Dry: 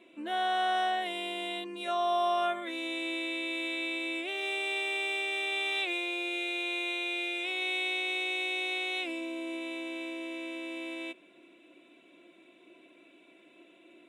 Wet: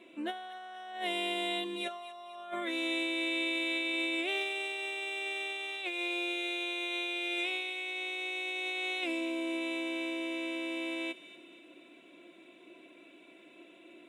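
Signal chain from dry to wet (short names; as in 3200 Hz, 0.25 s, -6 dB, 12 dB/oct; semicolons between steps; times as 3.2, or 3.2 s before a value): negative-ratio compressor -35 dBFS, ratio -0.5; on a send: thin delay 0.238 s, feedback 49%, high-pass 2000 Hz, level -13.5 dB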